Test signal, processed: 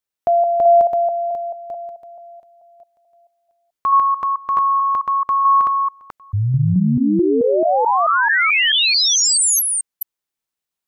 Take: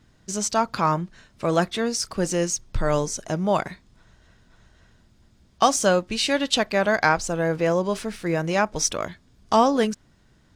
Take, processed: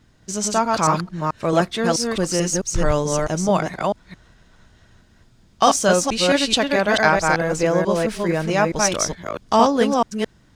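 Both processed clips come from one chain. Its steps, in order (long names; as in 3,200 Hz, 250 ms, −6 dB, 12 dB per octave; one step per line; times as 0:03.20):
delay that plays each chunk backwards 218 ms, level −2 dB
level +2 dB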